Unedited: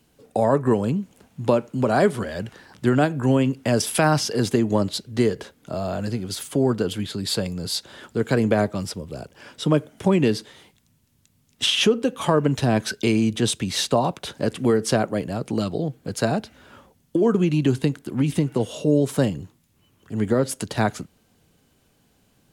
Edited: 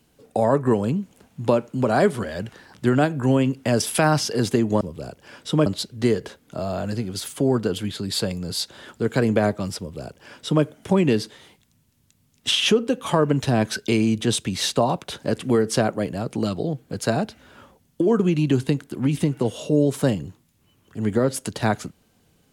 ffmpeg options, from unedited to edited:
ffmpeg -i in.wav -filter_complex "[0:a]asplit=3[link_01][link_02][link_03];[link_01]atrim=end=4.812[link_04];[link_02]atrim=start=8.938:end=9.792[link_05];[link_03]atrim=start=4.808[link_06];[link_04][link_05]acrossfade=duration=0.004:curve1=hsin:curve2=hsin[link_07];[link_07][link_06]acrossfade=duration=0.004:curve1=hsin:curve2=hsin" out.wav

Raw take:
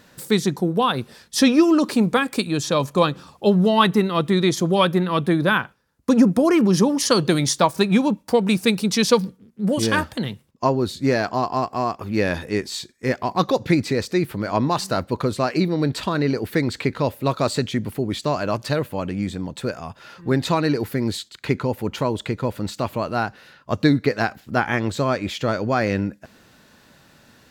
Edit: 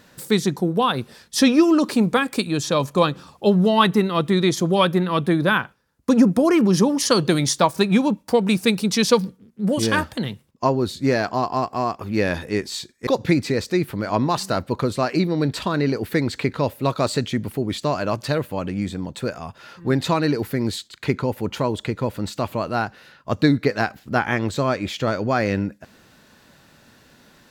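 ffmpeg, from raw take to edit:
ffmpeg -i in.wav -filter_complex "[0:a]asplit=2[link_01][link_02];[link_01]atrim=end=13.072[link_03];[link_02]atrim=start=13.478[link_04];[link_03][link_04]acrossfade=duration=0.004:curve1=hsin:curve2=hsin" out.wav

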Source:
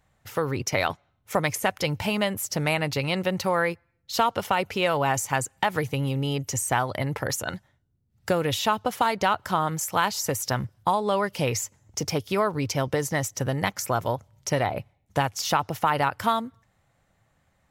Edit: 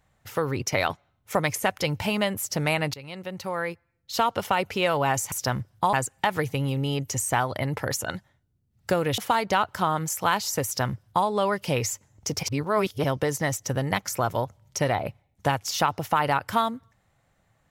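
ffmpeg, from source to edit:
ffmpeg -i in.wav -filter_complex "[0:a]asplit=7[link_01][link_02][link_03][link_04][link_05][link_06][link_07];[link_01]atrim=end=2.94,asetpts=PTS-STARTPTS,afade=type=out:start_time=2.936:duration=0.004:curve=hsin:silence=0.133352[link_08];[link_02]atrim=start=2.94:end=5.322,asetpts=PTS-STARTPTS,afade=type=in:duration=1.45:silence=0.133352[link_09];[link_03]atrim=start=10.358:end=10.972[link_10];[link_04]atrim=start=5.318:end=8.572[link_11];[link_05]atrim=start=8.888:end=12.142[link_12];[link_06]atrim=start=12.138:end=12.752,asetpts=PTS-STARTPTS,areverse[link_13];[link_07]atrim=start=12.748[link_14];[link_08][link_09]concat=n=2:v=0:a=1[link_15];[link_15][link_10]acrossfade=duration=0.004:curve1=hsin:curve2=hsin[link_16];[link_16][link_11]acrossfade=duration=0.004:curve1=hsin:curve2=hsin[link_17];[link_17][link_12]acrossfade=duration=0.004:curve1=hsin:curve2=hsin[link_18];[link_18][link_13]acrossfade=duration=0.004:curve1=hsin:curve2=hsin[link_19];[link_19][link_14]acrossfade=duration=0.004:curve1=hsin:curve2=hsin" out.wav

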